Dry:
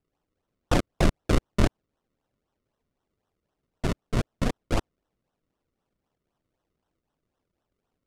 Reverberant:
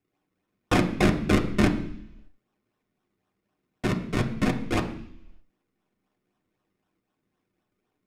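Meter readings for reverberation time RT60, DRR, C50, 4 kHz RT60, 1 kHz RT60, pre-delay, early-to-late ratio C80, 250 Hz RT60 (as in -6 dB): 0.70 s, 2.5 dB, 11.0 dB, 0.95 s, 0.70 s, 3 ms, 14.0 dB, 0.85 s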